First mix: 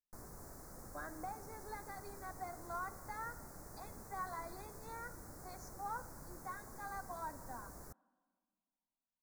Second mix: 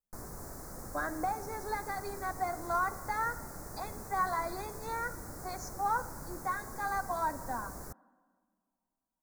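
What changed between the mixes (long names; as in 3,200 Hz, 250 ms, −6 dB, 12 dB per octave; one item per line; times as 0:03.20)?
speech +12.0 dB
background +8.0 dB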